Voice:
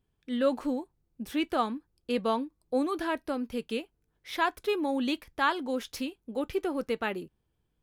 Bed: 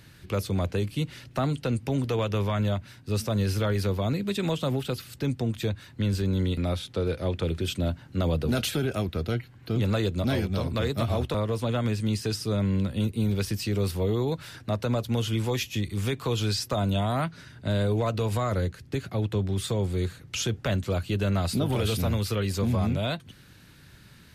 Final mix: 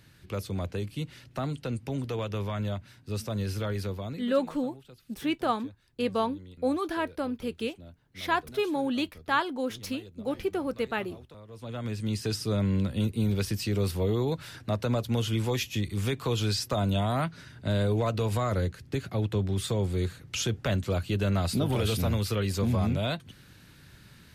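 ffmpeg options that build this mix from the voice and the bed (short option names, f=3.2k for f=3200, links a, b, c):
-filter_complex "[0:a]adelay=3900,volume=0.5dB[a];[1:a]volume=15dB,afade=t=out:st=3.78:d=0.67:silence=0.158489,afade=t=in:st=11.48:d=0.86:silence=0.0944061[b];[a][b]amix=inputs=2:normalize=0"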